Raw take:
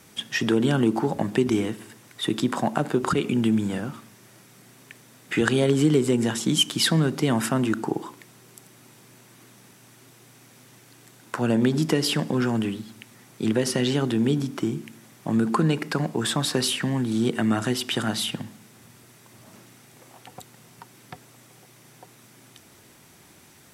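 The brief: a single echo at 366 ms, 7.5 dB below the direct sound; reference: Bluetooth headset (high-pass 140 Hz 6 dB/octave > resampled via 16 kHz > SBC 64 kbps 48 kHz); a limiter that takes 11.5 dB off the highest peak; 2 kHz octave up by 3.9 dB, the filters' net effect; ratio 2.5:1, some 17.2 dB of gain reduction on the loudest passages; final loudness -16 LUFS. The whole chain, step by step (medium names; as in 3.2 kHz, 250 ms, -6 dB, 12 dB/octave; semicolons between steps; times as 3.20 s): peaking EQ 2 kHz +5 dB; compression 2.5:1, threshold -42 dBFS; peak limiter -28.5 dBFS; high-pass 140 Hz 6 dB/octave; delay 366 ms -7.5 dB; resampled via 16 kHz; trim +25.5 dB; SBC 64 kbps 48 kHz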